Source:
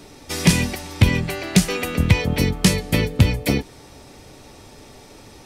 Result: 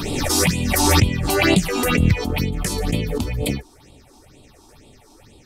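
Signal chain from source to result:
all-pass phaser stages 6, 2.1 Hz, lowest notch 130–1,700 Hz
background raised ahead of every attack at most 25 dB per second
level −4 dB

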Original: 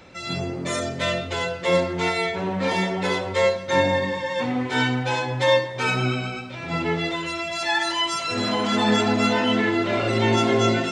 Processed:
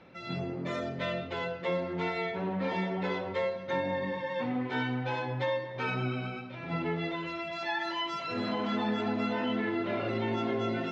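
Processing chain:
high-frequency loss of the air 240 metres
downward compressor, threshold −21 dBFS, peak gain reduction 6.5 dB
low shelf with overshoot 110 Hz −6 dB, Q 1.5
level −6.5 dB

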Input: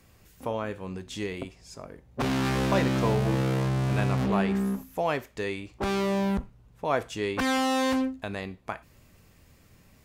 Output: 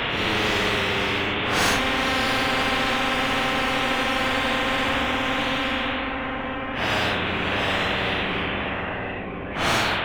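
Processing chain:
variable-slope delta modulation 16 kbit/s
transient designer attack +11 dB, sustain −4 dB
in parallel at −11 dB: gain into a clipping stage and back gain 28 dB
on the sum: extreme stretch with random phases 6.2×, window 0.05 s, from 0:07.13
on a send: feedback echo with a low-pass in the loop 974 ms, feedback 49%, low-pass 1,900 Hz, level −16 dB
on the sum: every bin compressed towards the loudest bin 4 to 1

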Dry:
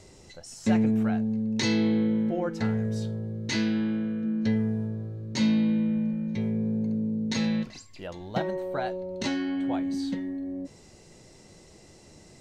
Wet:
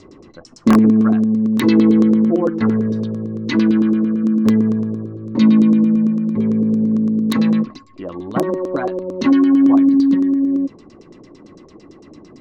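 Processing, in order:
auto-filter low-pass saw down 8.9 Hz 400–6,300 Hz
wrap-around overflow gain 13.5 dB
hollow resonant body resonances 280/1,100 Hz, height 16 dB, ringing for 25 ms
level +1 dB

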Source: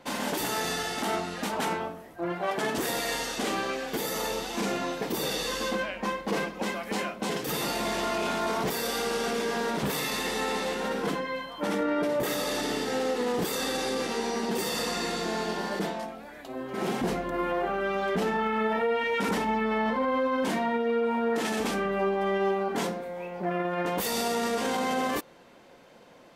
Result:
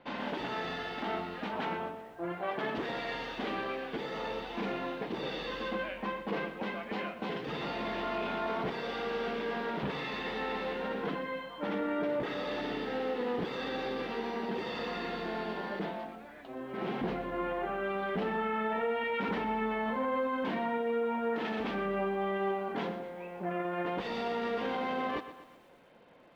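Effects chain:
low-pass filter 3,500 Hz 24 dB per octave
feedback echo at a low word length 122 ms, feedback 55%, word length 9 bits, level −13 dB
level −5.5 dB

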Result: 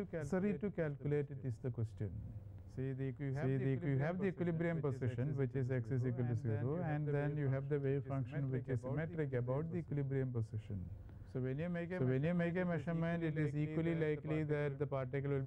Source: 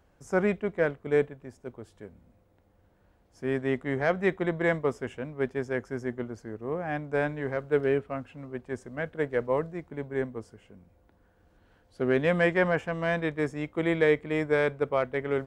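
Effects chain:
parametric band 110 Hz +13.5 dB 0.73 octaves
on a send: backwards echo 648 ms −11 dB
on the sum: downward compressor 2.5 to 1, threshold −44 dBFS, peak gain reduction 17.5 dB
low-shelf EQ 300 Hz +10.5 dB
level −3 dB

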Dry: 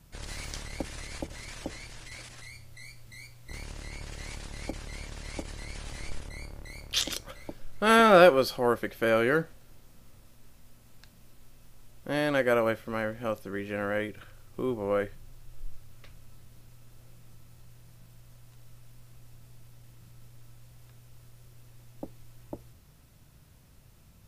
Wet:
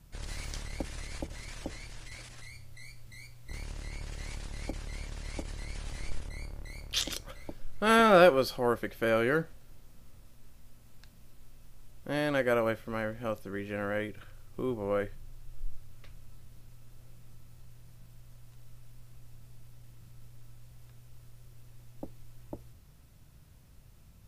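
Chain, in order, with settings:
low-shelf EQ 100 Hz +6 dB
level −3 dB

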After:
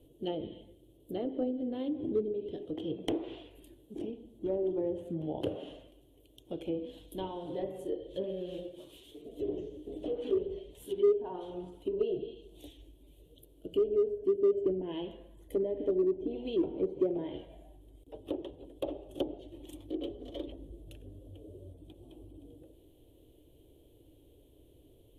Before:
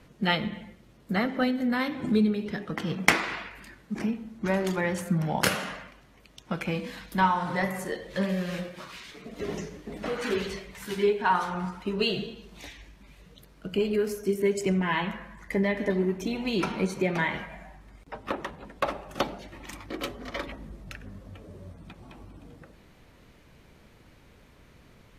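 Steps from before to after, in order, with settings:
drawn EQ curve 110 Hz 0 dB, 210 Hz −15 dB, 300 Hz +8 dB, 460 Hz +3 dB, 650 Hz −3 dB, 1,300 Hz −28 dB, 2,200 Hz −24 dB, 3,200 Hz +1 dB, 4,900 Hz −21 dB, 11,000 Hz +6 dB
treble cut that deepens with the level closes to 1,200 Hz, closed at −24 dBFS
in parallel at −10.5 dB: gain into a clipping stage and back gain 20 dB
on the sum: level −7 dB

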